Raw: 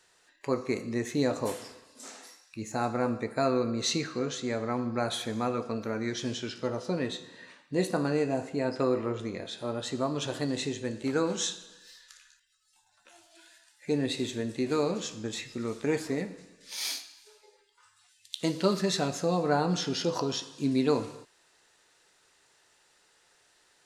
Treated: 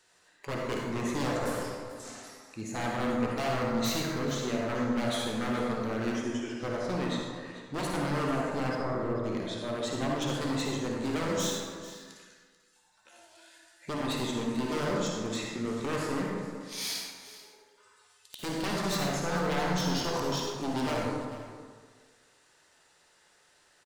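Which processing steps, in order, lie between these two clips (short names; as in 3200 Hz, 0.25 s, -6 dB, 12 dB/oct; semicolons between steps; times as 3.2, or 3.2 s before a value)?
6.12–6.6 fixed phaser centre 820 Hz, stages 8; wavefolder -26.5 dBFS; 8.75–9.24 running mean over 16 samples; echo 0.439 s -16 dB; reverb RT60 1.6 s, pre-delay 43 ms, DRR -1.5 dB; gain -2 dB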